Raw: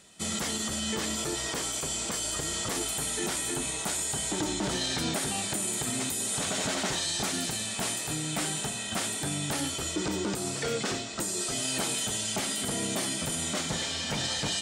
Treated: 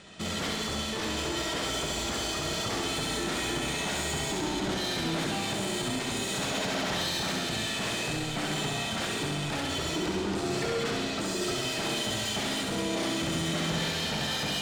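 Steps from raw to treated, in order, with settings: LPF 4000 Hz 12 dB/oct; limiter -27 dBFS, peak gain reduction 7.5 dB; soft clip -37.5 dBFS, distortion -11 dB; flutter echo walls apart 11.5 m, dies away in 1.1 s; gain +8 dB

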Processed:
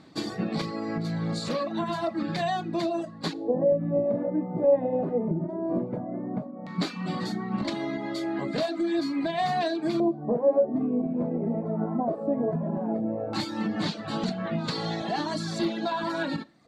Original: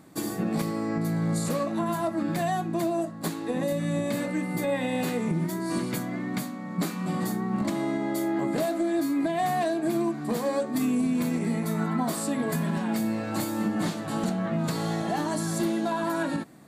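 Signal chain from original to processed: LFO low-pass square 0.15 Hz 610–4300 Hz; Schroeder reverb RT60 0.48 s, combs from 26 ms, DRR 11.5 dB; reverb removal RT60 0.75 s

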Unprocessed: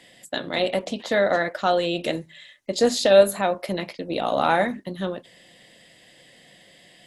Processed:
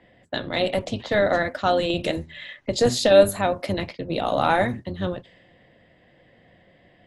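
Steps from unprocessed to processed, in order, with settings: octaver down 1 oct, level -3 dB; 1.9–3.85 upward compressor, threshold -21 dBFS; low-pass opened by the level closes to 1400 Hz, open at -20.5 dBFS

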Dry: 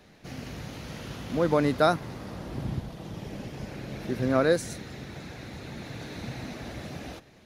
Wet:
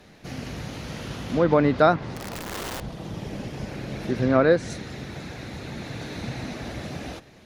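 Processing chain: treble ducked by the level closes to 2900 Hz, closed at -19 dBFS; 2.16–2.81 wrapped overs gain 32.5 dB; gain +4.5 dB

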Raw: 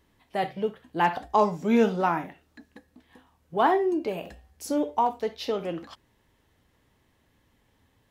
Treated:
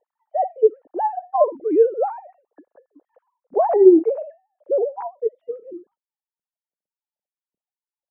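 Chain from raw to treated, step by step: sine-wave speech; low-pass sweep 590 Hz -> 190 Hz, 4.72–5.95; gain +3.5 dB

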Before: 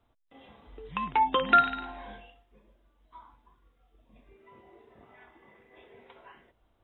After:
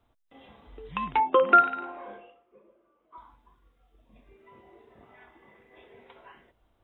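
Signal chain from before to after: 1.2–3.18 speaker cabinet 220–2500 Hz, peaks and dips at 260 Hz -5 dB, 360 Hz +10 dB, 540 Hz +8 dB, 870 Hz -4 dB, 1200 Hz +8 dB, 1800 Hz -8 dB; gain +1 dB

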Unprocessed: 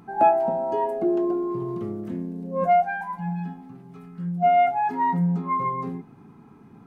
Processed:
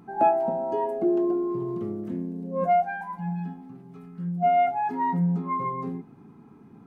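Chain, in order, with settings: bell 290 Hz +4.5 dB 2.2 oct; gain -4.5 dB

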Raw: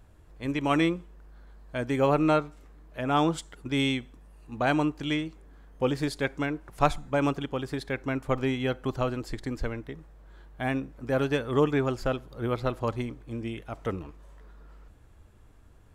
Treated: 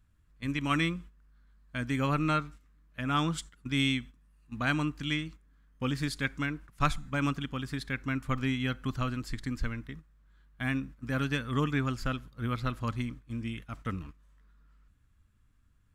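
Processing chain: gate -42 dBFS, range -11 dB; band shelf 550 Hz -12.5 dB

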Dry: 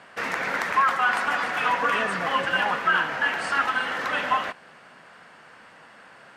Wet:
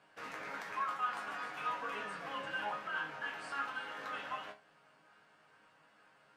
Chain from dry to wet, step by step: bell 1900 Hz -5 dB 0.24 oct; resonator bank G#2 sus4, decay 0.25 s; gain -4 dB

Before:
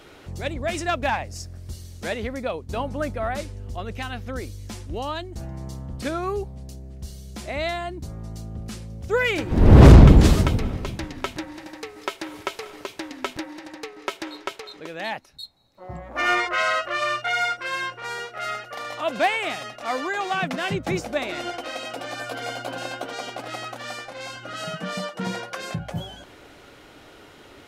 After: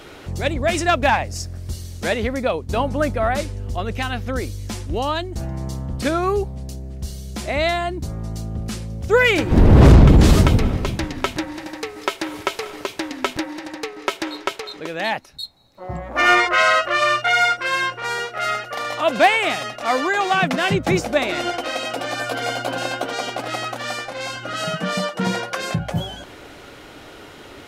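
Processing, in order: limiter -10.5 dBFS, peak gain reduction 8 dB; gain +7 dB

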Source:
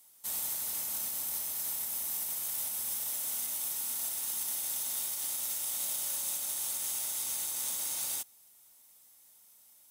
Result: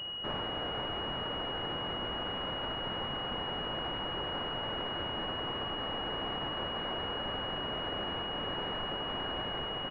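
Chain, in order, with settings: tracing distortion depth 0.034 ms; on a send: diffused feedback echo 0.596 s, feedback 50%, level -9.5 dB; on the sum: compressor 2.5:1, threshold -40 dBFS, peak gain reduction 6.5 dB; tilt +3 dB/oct; doubler 47 ms -5.5 dB; in parallel at +1 dB: limiter -21.5 dBFS, peak gain reduction 7.5 dB; on the sum: vocal rider 0.5 s; pulse-width modulation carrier 2900 Hz; gain -6.5 dB

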